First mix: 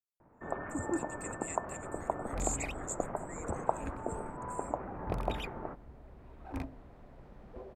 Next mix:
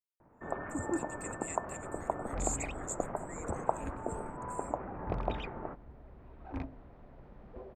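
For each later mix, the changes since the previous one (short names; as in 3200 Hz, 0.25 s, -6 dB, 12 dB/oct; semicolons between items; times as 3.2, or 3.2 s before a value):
second sound: add air absorption 170 m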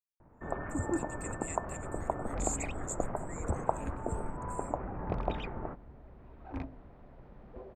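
first sound: add low shelf 110 Hz +11.5 dB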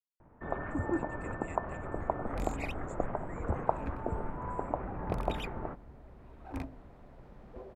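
speech: add LPF 2700 Hz 12 dB/oct; first sound: remove air absorption 230 m; second sound: remove air absorption 170 m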